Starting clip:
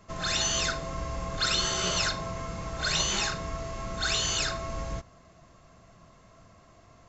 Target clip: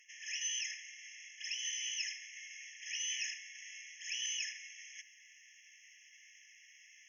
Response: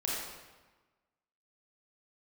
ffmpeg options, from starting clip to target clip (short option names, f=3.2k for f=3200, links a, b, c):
-af "areverse,acompressor=threshold=-40dB:ratio=16,areverse,afftfilt=real='re*eq(mod(floor(b*sr/1024/1700),2),1)':imag='im*eq(mod(floor(b*sr/1024/1700),2),1)':win_size=1024:overlap=0.75,volume=8.5dB"